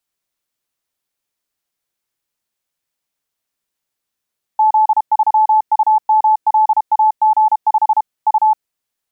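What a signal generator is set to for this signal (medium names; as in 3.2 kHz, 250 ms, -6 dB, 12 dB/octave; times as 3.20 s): Morse "Z3UMLAG5 U" 32 wpm 865 Hz -8 dBFS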